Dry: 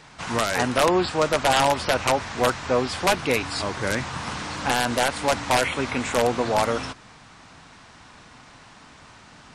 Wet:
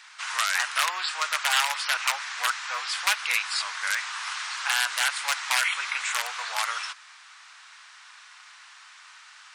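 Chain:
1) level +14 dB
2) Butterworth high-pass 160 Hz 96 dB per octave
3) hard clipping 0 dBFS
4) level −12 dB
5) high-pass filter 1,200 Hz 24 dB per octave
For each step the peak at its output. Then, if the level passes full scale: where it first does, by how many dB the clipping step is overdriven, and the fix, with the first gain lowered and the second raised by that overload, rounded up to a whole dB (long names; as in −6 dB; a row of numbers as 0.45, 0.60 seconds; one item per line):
+5.5, +8.0, 0.0, −12.0, −6.5 dBFS
step 1, 8.0 dB
step 1 +6 dB, step 4 −4 dB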